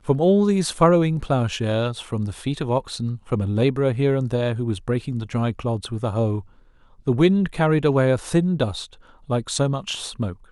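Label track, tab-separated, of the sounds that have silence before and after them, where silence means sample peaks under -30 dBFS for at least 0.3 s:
7.070000	8.850000	sound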